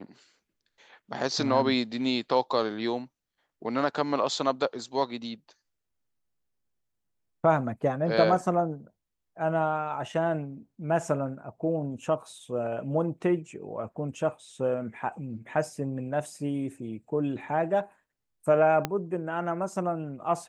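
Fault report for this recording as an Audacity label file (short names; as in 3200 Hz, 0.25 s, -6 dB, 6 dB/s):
18.850000	18.850000	pop -12 dBFS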